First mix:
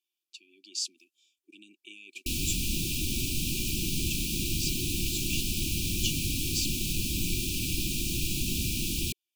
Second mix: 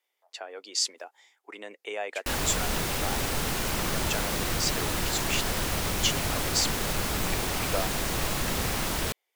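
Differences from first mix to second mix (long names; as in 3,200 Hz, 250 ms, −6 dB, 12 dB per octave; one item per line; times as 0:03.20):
speech +5.5 dB
master: remove linear-phase brick-wall band-stop 380–2,300 Hz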